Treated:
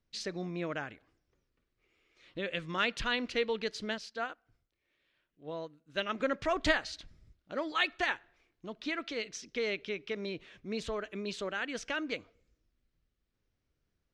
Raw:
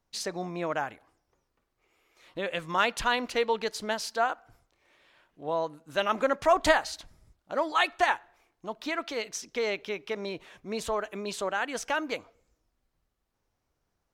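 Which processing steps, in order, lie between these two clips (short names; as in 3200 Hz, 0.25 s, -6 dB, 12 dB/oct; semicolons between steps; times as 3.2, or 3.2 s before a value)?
LPF 4400 Hz 12 dB/oct; bell 860 Hz -13.5 dB 1.2 oct; 3.98–6.2 upward expander 1.5:1, over -50 dBFS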